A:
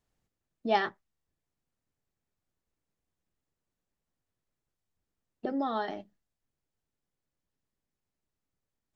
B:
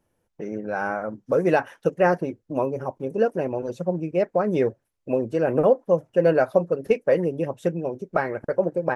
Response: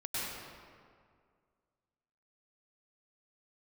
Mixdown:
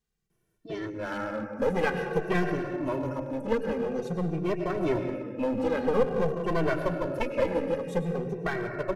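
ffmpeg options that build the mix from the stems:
-filter_complex "[0:a]acompressor=threshold=-33dB:ratio=4,volume=0.5dB,asplit=2[a][b];[b]volume=-21dB[c];[1:a]adelay=300,volume=0.5dB,asplit=2[d][e];[e]volume=-8.5dB[f];[2:a]atrim=start_sample=2205[g];[c][f]amix=inputs=2:normalize=0[h];[h][g]afir=irnorm=-1:irlink=0[i];[a][d][i]amix=inputs=3:normalize=0,equalizer=f=740:t=o:w=1:g=-8,aeval=exprs='clip(val(0),-1,0.0501)':c=same,asplit=2[j][k];[k]adelay=2.1,afreqshift=-0.49[l];[j][l]amix=inputs=2:normalize=1"

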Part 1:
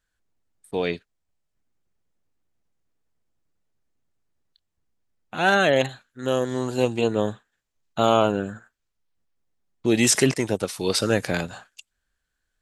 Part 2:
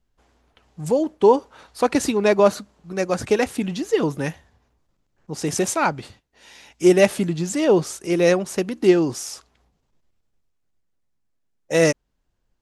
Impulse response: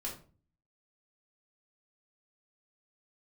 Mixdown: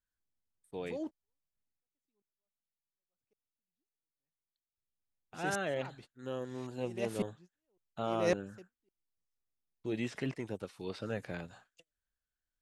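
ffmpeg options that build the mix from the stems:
-filter_complex "[0:a]acrossover=split=3500[a][b];[b]acompressor=threshold=-46dB:ratio=4:attack=1:release=60[c];[a][c]amix=inputs=2:normalize=0,lowshelf=f=320:g=2.5,flanger=delay=0.7:depth=1.8:regen=-83:speed=0.47:shape=sinusoidal,volume=-1dB,afade=t=out:st=1.64:d=0.24:silence=0.266073,afade=t=in:st=4.67:d=0.43:silence=0.281838,asplit=2[d][e];[1:a]aeval=exprs='val(0)*pow(10,-40*if(lt(mod(-1.8*n/s,1),2*abs(-1.8)/1000),1-mod(-1.8*n/s,1)/(2*abs(-1.8)/1000),(mod(-1.8*n/s,1)-2*abs(-1.8)/1000)/(1-2*abs(-1.8)/1000))/20)':c=same,volume=-10.5dB[f];[e]apad=whole_len=556378[g];[f][g]sidechaingate=range=-50dB:threshold=-60dB:ratio=16:detection=peak[h];[d][h]amix=inputs=2:normalize=0"

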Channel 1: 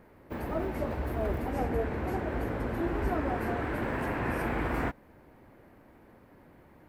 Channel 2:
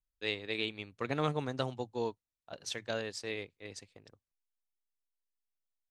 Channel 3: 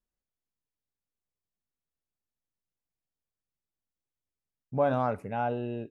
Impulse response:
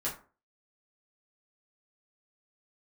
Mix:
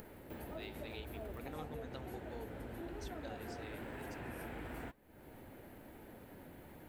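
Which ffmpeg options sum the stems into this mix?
-filter_complex "[0:a]equalizer=f=1.1k:w=5.2:g=-7.5,acompressor=mode=upward:threshold=-39dB:ratio=2.5,aexciter=amount=2.3:drive=1.5:freq=2.9k,volume=-1.5dB[a];[1:a]adelay=350,volume=-2dB[b];[a][b]amix=inputs=2:normalize=0,flanger=delay=2.3:depth=9.3:regen=83:speed=1:shape=sinusoidal,acompressor=threshold=-47dB:ratio=2.5"

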